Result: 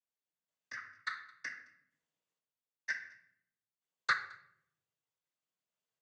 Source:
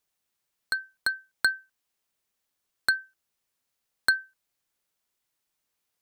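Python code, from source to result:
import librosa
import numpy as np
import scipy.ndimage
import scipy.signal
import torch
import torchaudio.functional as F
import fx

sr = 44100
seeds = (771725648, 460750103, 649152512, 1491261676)

p1 = fx.pitch_trill(x, sr, semitones=2.5, every_ms=379)
p2 = fx.high_shelf(p1, sr, hz=3000.0, db=-8.5)
p3 = fx.level_steps(p2, sr, step_db=13)
p4 = np.where(np.abs(p3) >= 10.0 ** (-18.5 / 20.0), p3, 0.0)
p5 = p3 + F.gain(torch.from_numpy(p4), -10.0).numpy()
p6 = fx.tremolo_random(p5, sr, seeds[0], hz=2.1, depth_pct=75)
p7 = fx.noise_vocoder(p6, sr, seeds[1], bands=16)
p8 = p7 + 10.0 ** (-23.5 / 20.0) * np.pad(p7, (int(217 * sr / 1000.0), 0))[:len(p7)]
p9 = fx.room_shoebox(p8, sr, seeds[2], volume_m3=140.0, walls='mixed', distance_m=0.57)
p10 = fx.upward_expand(p9, sr, threshold_db=-32.0, expansion=2.5)
y = F.gain(torch.from_numpy(p10), 3.5).numpy()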